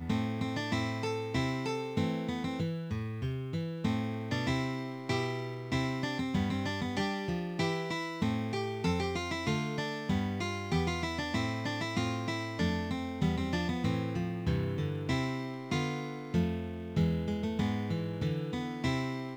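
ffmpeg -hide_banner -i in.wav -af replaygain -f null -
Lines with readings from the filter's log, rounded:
track_gain = +15.0 dB
track_peak = 0.090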